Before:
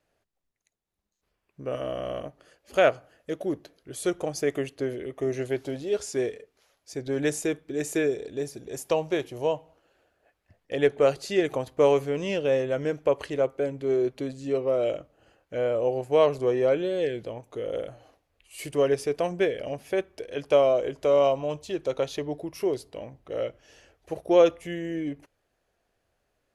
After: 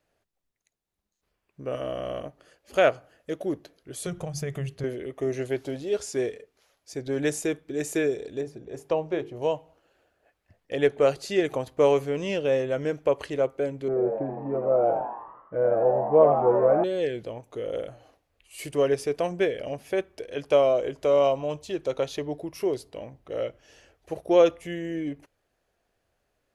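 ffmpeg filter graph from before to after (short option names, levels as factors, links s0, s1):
-filter_complex "[0:a]asettb=1/sr,asplit=3[s0][s1][s2];[s0]atrim=end=4.064[s3];[s1]atrim=start=4.06:end=4.84,asetpts=PTS-STARTPTS,afade=t=in:d=0.004:c=qsin,afade=t=out:st=0.776:d=0.004:c=qsin,lowshelf=f=210:t=q:w=3:g=9.5,acompressor=threshold=0.0355:ratio=2.5:attack=3.2:release=140:knee=1:detection=peak,bandreject=f=50:t=h:w=6,bandreject=f=100:t=h:w=6,bandreject=f=150:t=h:w=6,bandreject=f=200:t=h:w=6,bandreject=f=250:t=h:w=6,bandreject=f=300:t=h:w=6,bandreject=f=350:t=h:w=6,bandreject=f=400:t=h:w=6[s4];[s2]atrim=start=4.836[s5];[s3][s4]acrossfade=d=0.004:c1=hsin:c2=qsin[s6];[s6][s5]acrossfade=d=0.004:c1=qsin:c2=hsin,asettb=1/sr,asplit=3[s7][s8][s9];[s7]atrim=end=8.414[s10];[s8]atrim=start=8.41:end=9.42,asetpts=PTS-STARTPTS,afade=t=in:d=0.004:c=qsin,afade=t=out:st=1.006:d=0.004:c=qsin,lowpass=f=1400:p=1,bandreject=f=50:t=h:w=6,bandreject=f=100:t=h:w=6,bandreject=f=150:t=h:w=6,bandreject=f=200:t=h:w=6,bandreject=f=250:t=h:w=6,bandreject=f=300:t=h:w=6,bandreject=f=350:t=h:w=6,bandreject=f=400:t=h:w=6,bandreject=f=450:t=h:w=6[s11];[s9]atrim=start=9.416[s12];[s10][s11]acrossfade=d=0.004:c1=hsin:c2=qsin[s13];[s13][s12]acrossfade=d=0.004:c1=qsin:c2=hsin,asettb=1/sr,asplit=3[s14][s15][s16];[s14]atrim=end=13.884[s17];[s15]atrim=start=13.88:end=16.84,asetpts=PTS-STARTPTS,afade=t=in:d=0.004:c=qsin,afade=t=out:st=2.956:d=0.004:c=qsin,lowpass=f=1400:w=0.5412,lowpass=f=1400:w=1.3066,aecho=1:1:6.1:0.52,atrim=end_sample=130536,asplit=9[s18][s19][s20][s21][s22][s23][s24][s25][s26];[s19]adelay=81,afreqshift=87,volume=0.501[s27];[s20]adelay=162,afreqshift=174,volume=0.305[s28];[s21]adelay=243,afreqshift=261,volume=0.186[s29];[s22]adelay=324,afreqshift=348,volume=0.114[s30];[s23]adelay=405,afreqshift=435,volume=0.0692[s31];[s24]adelay=486,afreqshift=522,volume=0.0422[s32];[s25]adelay=567,afreqshift=609,volume=0.0257[s33];[s26]adelay=648,afreqshift=696,volume=0.0157[s34];[s18][s27][s28][s29][s30][s31][s32][s33][s34]amix=inputs=9:normalize=0,atrim=end_sample=130536[s35];[s16]atrim=start=16.836[s36];[s17][s35]acrossfade=d=0.004:c1=hsin:c2=qsin[s37];[s37][s36]acrossfade=d=0.004:c1=qsin:c2=hsin"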